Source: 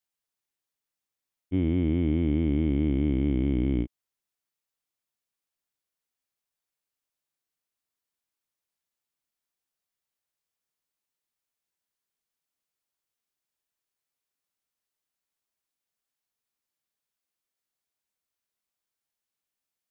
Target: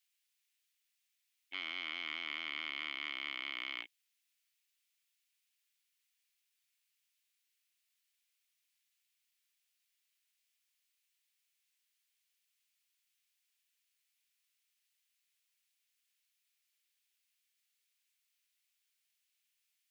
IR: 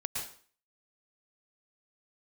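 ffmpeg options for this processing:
-af "aeval=exprs='0.178*(cos(1*acos(clip(val(0)/0.178,-1,1)))-cos(1*PI/2))+0.02*(cos(5*acos(clip(val(0)/0.178,-1,1)))-cos(5*PI/2))+0.00794*(cos(8*acos(clip(val(0)/0.178,-1,1)))-cos(8*PI/2))':c=same,highpass=f=2.4k:t=q:w=1.7,volume=1.5dB"

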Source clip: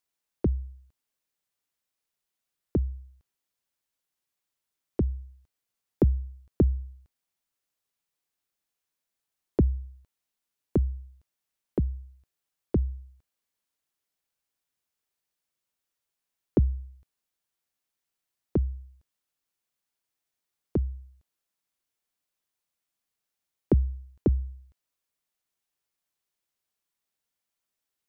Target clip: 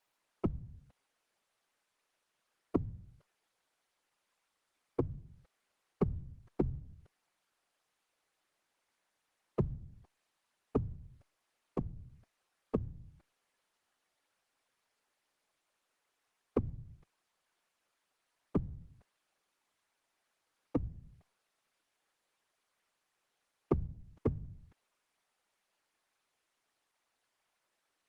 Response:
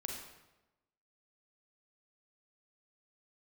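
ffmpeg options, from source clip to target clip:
-filter_complex "[0:a]asettb=1/sr,asplit=3[a][b][c];[a]atrim=end=16.794[d];[b]atrim=start=16.79:end=18.68,asetpts=PTS-STARTPTS,afade=t=in:d=0.004:c=qsin,afade=t=out:st=1.886:d=0.004:c=qsin,equalizer=f=120:w=4.4:g=-5.5[e];[c]atrim=start=18.676[f];[d][e]acrossfade=d=0.004:c1=hsin:c2=qsin[g];[g][f]acrossfade=d=0.004:c1=qsin:c2=hsin,acompressor=threshold=-43dB:ratio=2,asplit=2[h][i];[i]highpass=f=720:p=1,volume=20dB,asoftclip=type=tanh:threshold=-21dB[j];[h][j]amix=inputs=2:normalize=0,lowpass=f=1.4k:p=1,volume=-6dB,afftfilt=real='hypot(re,im)*cos(2*PI*random(0))':imag='hypot(re,im)*sin(2*PI*random(1))':win_size=512:overlap=0.75,volume=8dB" -ar 48000 -c:a libopus -b:a 24k

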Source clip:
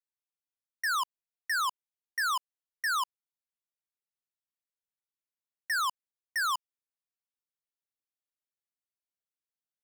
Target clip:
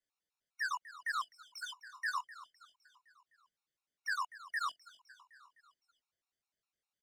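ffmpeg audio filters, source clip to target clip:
-filter_complex "[0:a]lowpass=6.6k,atempo=1.4,asplit=2[a][b];[b]asoftclip=type=hard:threshold=-39.5dB,volume=-6dB[c];[a][c]amix=inputs=2:normalize=0,alimiter=level_in=13dB:limit=-24dB:level=0:latency=1,volume=-13dB,flanger=delay=19.5:depth=2.7:speed=1.5,asplit=2[d][e];[e]aecho=0:1:256|512|768|1024|1280:0.15|0.0868|0.0503|0.0292|0.0169[f];[d][f]amix=inputs=2:normalize=0,afftfilt=real='re*gt(sin(2*PI*4.9*pts/sr)*(1-2*mod(floor(b*sr/1024/730),2)),0)':imag='im*gt(sin(2*PI*4.9*pts/sr)*(1-2*mod(floor(b*sr/1024/730),2)),0)':win_size=1024:overlap=0.75,volume=8dB"

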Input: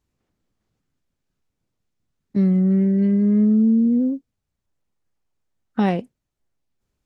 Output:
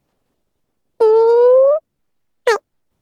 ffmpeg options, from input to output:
-af "asetrate=103194,aresample=44100,volume=6.5dB"

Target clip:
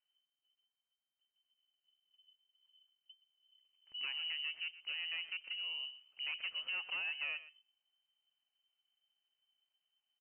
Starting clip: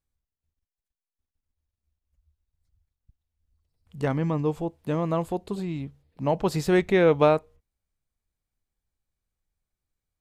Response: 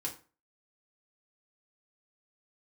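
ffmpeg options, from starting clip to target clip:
-af "acompressor=threshold=-37dB:ratio=2.5,asoftclip=type=tanh:threshold=-33.5dB,aecho=1:1:122:0.158,lowpass=f=2.6k:t=q:w=0.5098,lowpass=f=2.6k:t=q:w=0.6013,lowpass=f=2.6k:t=q:w=0.9,lowpass=f=2.6k:t=q:w=2.563,afreqshift=-3100,volume=-2.5dB"

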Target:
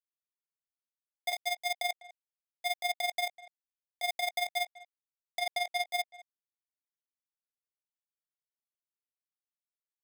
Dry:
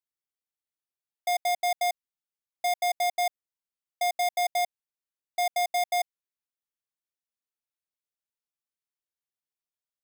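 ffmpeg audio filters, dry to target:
-filter_complex "[0:a]asettb=1/sr,asplit=3[a][b][c];[a]atrim=end=1.324[d];[b]atrim=start=1.32:end=1.74,asetpts=PTS-STARTPTS,afade=t=in:d=0.004:c=qsin,afade=t=out:st=0.416:d=0.004:c=qsin,agate=range=-33dB:threshold=-25dB:ratio=3:detection=peak[e];[c]atrim=start=1.736[f];[d][e]acrossfade=d=0.004:c1=hsin:c2=qsin[g];[g][f]acrossfade=d=0.004:c1=qsin:c2=hsin,highpass=670,equalizer=f=1.4k:w=6.8:g=13.5,asplit=2[h][i];[i]alimiter=level_in=2dB:limit=-24dB:level=0:latency=1,volume=-2dB,volume=0.5dB[j];[h][j]amix=inputs=2:normalize=0,asoftclip=type=tanh:threshold=-17dB,acrusher=bits=3:mix=0:aa=0.5,asettb=1/sr,asplit=3[k][l][m];[k]atrim=end=5.394[n];[l]atrim=start=5.39:end=5.87,asetpts=PTS-STARTPTS,afade=t=in:d=0.004:c=qsin,afade=t=out:st=0.476:d=0.004:c=qsin,adynamicsmooth=sensitivity=5:basefreq=1.3k[o];[m]atrim=start=5.866[p];[n][o]acrossfade=d=0.004:c1=hsin:c2=qsin[q];[q][p]acrossfade=d=0.004:c1=qsin:c2=hsin,acrusher=bits=7:mode=log:mix=0:aa=0.000001,tremolo=f=21:d=0.75,asplit=2[r][s];[s]adelay=200,highpass=300,lowpass=3.4k,asoftclip=type=hard:threshold=-25dB,volume=-16dB[t];[r][t]amix=inputs=2:normalize=0,volume=-3.5dB"

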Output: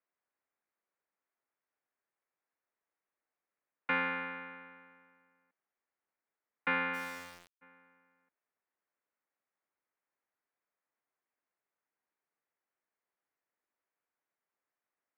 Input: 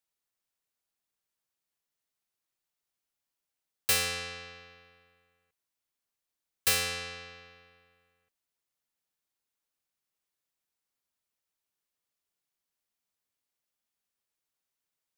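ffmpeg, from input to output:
-filter_complex "[0:a]highpass=f=540:t=q:w=0.5412,highpass=f=540:t=q:w=1.307,lowpass=f=2.4k:t=q:w=0.5176,lowpass=f=2.4k:t=q:w=0.7071,lowpass=f=2.4k:t=q:w=1.932,afreqshift=-260,asplit=3[a][b][c];[a]afade=t=out:st=6.93:d=0.02[d];[b]aeval=exprs='val(0)*gte(abs(val(0)),0.00376)':c=same,afade=t=in:st=6.93:d=0.02,afade=t=out:st=7.61:d=0.02[e];[c]afade=t=in:st=7.61:d=0.02[f];[d][e][f]amix=inputs=3:normalize=0,volume=3.5dB"

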